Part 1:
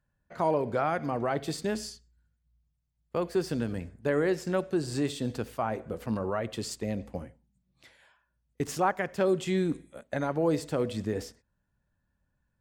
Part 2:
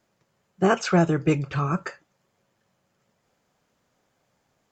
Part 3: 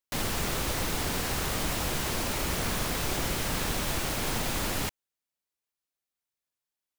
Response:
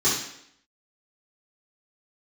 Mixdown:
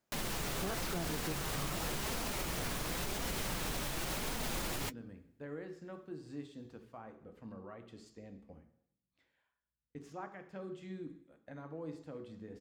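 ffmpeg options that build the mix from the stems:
-filter_complex "[0:a]lowpass=f=2900:p=1,adelay=1350,volume=0.119,asplit=2[s0][s1];[s1]volume=0.0891[s2];[1:a]volume=0.237[s3];[2:a]flanger=delay=4:depth=3.4:regen=-47:speed=0.92:shape=triangular,volume=1.26[s4];[3:a]atrim=start_sample=2205[s5];[s2][s5]afir=irnorm=-1:irlink=0[s6];[s0][s3][s4][s6]amix=inputs=4:normalize=0,alimiter=level_in=1.5:limit=0.0631:level=0:latency=1:release=183,volume=0.668"

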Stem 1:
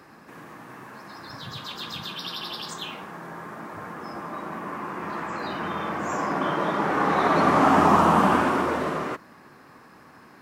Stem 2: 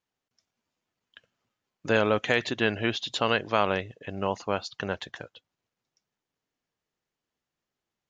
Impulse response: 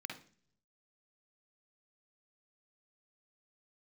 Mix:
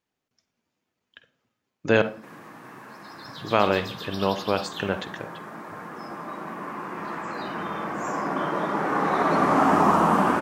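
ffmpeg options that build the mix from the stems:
-filter_complex "[0:a]highpass=110,adynamicequalizer=threshold=0.00891:dfrequency=3400:dqfactor=1.1:tfrequency=3400:tqfactor=1.1:attack=5:release=100:ratio=0.375:range=2:mode=cutabove:tftype=bell,adelay=1950,volume=0.891[s0];[1:a]tiltshelf=f=1100:g=3.5,volume=1.19,asplit=3[s1][s2][s3];[s1]atrim=end=2.02,asetpts=PTS-STARTPTS,afade=t=out:st=2.016:d=0.004:c=hsin[s4];[s2]atrim=start=2.02:end=3.44,asetpts=PTS-STARTPTS,volume=0[s5];[s3]atrim=start=3.44,asetpts=PTS-STARTPTS,afade=t=in:d=0.004:c=hsin[s6];[s4][s5][s6]concat=n=3:v=0:a=1,asplit=2[s7][s8];[s8]volume=0.631[s9];[2:a]atrim=start_sample=2205[s10];[s9][s10]afir=irnorm=-1:irlink=0[s11];[s0][s7][s11]amix=inputs=3:normalize=0"

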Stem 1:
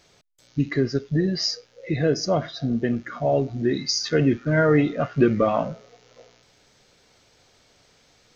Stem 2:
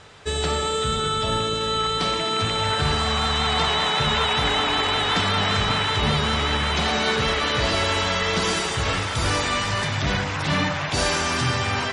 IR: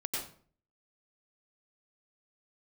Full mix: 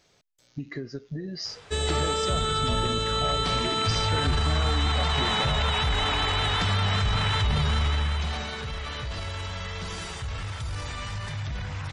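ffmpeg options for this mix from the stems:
-filter_complex "[0:a]acompressor=threshold=0.0562:ratio=12,volume=0.531[s0];[1:a]asubboost=boost=6:cutoff=110,alimiter=limit=0.2:level=0:latency=1:release=15,adelay=1450,volume=0.75,afade=t=out:st=7.78:d=0.75:silence=0.354813[s1];[s0][s1]amix=inputs=2:normalize=0"

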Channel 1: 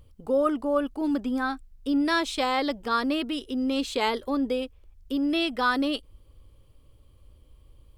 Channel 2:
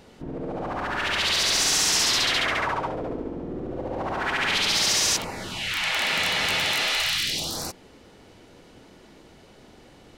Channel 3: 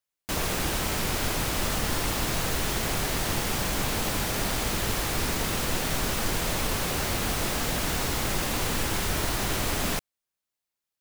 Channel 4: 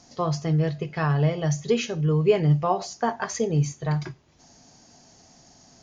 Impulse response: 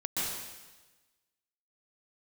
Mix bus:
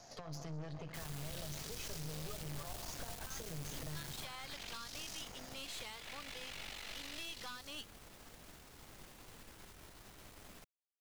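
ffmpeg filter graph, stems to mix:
-filter_complex "[0:a]highpass=1100,adelay=1850,volume=0.708[s0];[1:a]aeval=exprs='val(0)*sin(2*PI*24*n/s)':c=same,adelay=50,volume=0.168[s1];[2:a]adelay=650,volume=0.251[s2];[3:a]equalizer=f=250:t=o:w=0.67:g=-10,equalizer=f=630:t=o:w=0.67:g=8,equalizer=f=1600:t=o:w=0.67:g=4,acompressor=threshold=0.0501:ratio=6,volume=0.891,asplit=3[s3][s4][s5];[s4]volume=0.0668[s6];[s5]apad=whole_len=513999[s7];[s2][s7]sidechaingate=range=0.224:threshold=0.00282:ratio=16:detection=peak[s8];[s0][s1][s3]amix=inputs=3:normalize=0,acompressor=threshold=0.0178:ratio=3,volume=1[s9];[4:a]atrim=start_sample=2205[s10];[s6][s10]afir=irnorm=-1:irlink=0[s11];[s8][s9][s11]amix=inputs=3:normalize=0,acrossover=split=190|3000[s12][s13][s14];[s13]acompressor=threshold=0.00708:ratio=4[s15];[s12][s15][s14]amix=inputs=3:normalize=0,aeval=exprs='(tanh(126*val(0)+0.75)-tanh(0.75))/126':c=same"

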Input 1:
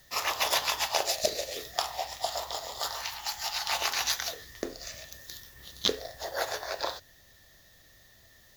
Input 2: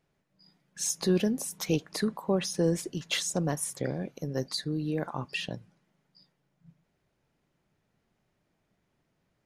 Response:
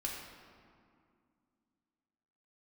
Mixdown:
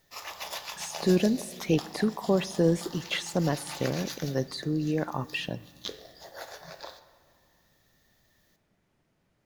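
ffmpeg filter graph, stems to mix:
-filter_complex "[0:a]volume=0.224,asplit=2[s0][s1];[s1]volume=0.447[s2];[1:a]acrossover=split=3200[s3][s4];[s4]acompressor=threshold=0.00794:ratio=4:attack=1:release=60[s5];[s3][s5]amix=inputs=2:normalize=0,volume=1.26,asplit=2[s6][s7];[s7]volume=0.133[s8];[2:a]atrim=start_sample=2205[s9];[s2][s8]amix=inputs=2:normalize=0[s10];[s10][s9]afir=irnorm=-1:irlink=0[s11];[s0][s6][s11]amix=inputs=3:normalize=0"

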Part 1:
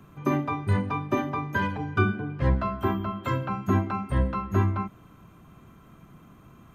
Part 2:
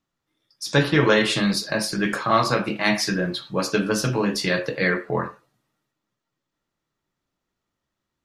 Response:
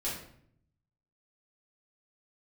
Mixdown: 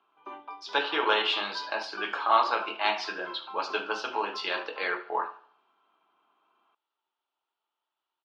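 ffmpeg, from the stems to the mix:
-filter_complex "[0:a]volume=0.211[s0];[1:a]volume=0.596,asplit=2[s1][s2];[s2]volume=0.133,aecho=0:1:72|144|216|288|360|432:1|0.44|0.194|0.0852|0.0375|0.0165[s3];[s0][s1][s3]amix=inputs=3:normalize=0,highpass=f=430:w=0.5412,highpass=f=430:w=1.3066,equalizer=f=530:t=q:w=4:g=-9,equalizer=f=880:t=q:w=4:g=9,equalizer=f=1400:t=q:w=4:g=3,equalizer=f=1900:t=q:w=4:g=-9,equalizer=f=3000:t=q:w=4:g=7,lowpass=f=4100:w=0.5412,lowpass=f=4100:w=1.3066"

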